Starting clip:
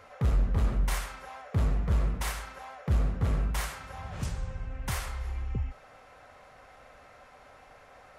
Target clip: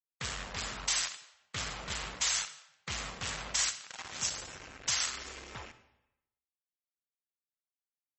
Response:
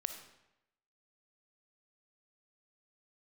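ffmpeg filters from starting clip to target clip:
-filter_complex "[0:a]bass=f=250:g=8,treble=f=4000:g=2,acrusher=bits=4:mix=0:aa=0.5,aderivative,asplit=2[s0][s1];[1:a]atrim=start_sample=2205[s2];[s1][s2]afir=irnorm=-1:irlink=0,volume=1.58[s3];[s0][s3]amix=inputs=2:normalize=0,volume=1.5" -ar 32000 -c:a libmp3lame -b:a 32k

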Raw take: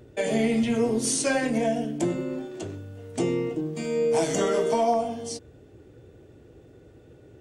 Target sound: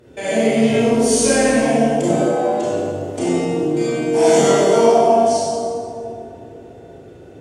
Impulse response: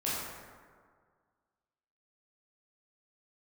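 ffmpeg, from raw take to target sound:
-filter_complex "[0:a]lowshelf=f=140:g=-10.5,asplit=2[s0][s1];[s1]alimiter=limit=0.075:level=0:latency=1,volume=1.33[s2];[s0][s2]amix=inputs=2:normalize=0,asettb=1/sr,asplit=3[s3][s4][s5];[s3]atrim=end=0.854[s6];[s4]atrim=start=0.85:end=1.48,asetpts=PTS-STARTPTS,afade=t=in:d=0.004:c=qsin,afade=t=out:st=0.626:d=0.004:c=qsin,aeval=exprs='val(0)+0.00708*(sin(2*PI*50*n/s)+sin(2*PI*2*50*n/s)/2+sin(2*PI*3*50*n/s)/3+sin(2*PI*4*50*n/s)/4+sin(2*PI*5*50*n/s)/5)':c=same[s7];[s5]atrim=start=1.476[s8];[s6][s7]acrossfade=d=0.004:c1=hsin:c2=qsin[s9];[s9][s8]acrossfade=d=0.004:c1=qsin:c2=hsin,asettb=1/sr,asplit=3[s10][s11][s12];[s10]atrim=end=2.094[s13];[s11]atrim=start=2.09:end=2.58,asetpts=PTS-STARTPTS,afade=t=in:d=0.004:c=qsin,afade=t=out:st=0.486:d=0.004:c=qsin,afreqshift=230[s14];[s12]atrim=start=2.576[s15];[s13][s14]acrossfade=d=0.004:c1=hsin:c2=qsin[s16];[s16][s15]acrossfade=d=0.004:c1=qsin:c2=hsin,asettb=1/sr,asplit=3[s17][s18][s19];[s17]atrim=end=4.174[s20];[s18]atrim=start=4.17:end=4.88,asetpts=PTS-STARTPTS,afade=t=in:d=0.004:c=qsin,afade=t=out:st=0.706:d=0.004:c=qsin,asplit=2[s21][s22];[s22]adelay=21,volume=0.75[s23];[s21][s23]amix=inputs=2:normalize=0,atrim=end_sample=31311[s24];[s19]atrim=start=4.876[s25];[s20][s24]acrossfade=d=0.004:c1=hsin:c2=qsin[s26];[s26][s25]acrossfade=d=0.004:c1=qsin:c2=hsin[s27];[1:a]atrim=start_sample=2205,asetrate=26460,aresample=44100[s28];[s27][s28]afir=irnorm=-1:irlink=0,volume=0.562"

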